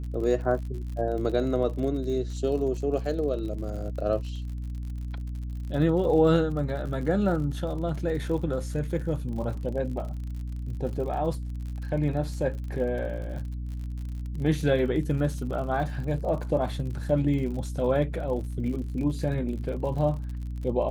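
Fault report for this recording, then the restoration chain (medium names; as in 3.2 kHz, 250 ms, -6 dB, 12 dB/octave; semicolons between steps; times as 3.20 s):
crackle 55 per s -36 dBFS
hum 60 Hz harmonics 5 -33 dBFS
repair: de-click; de-hum 60 Hz, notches 5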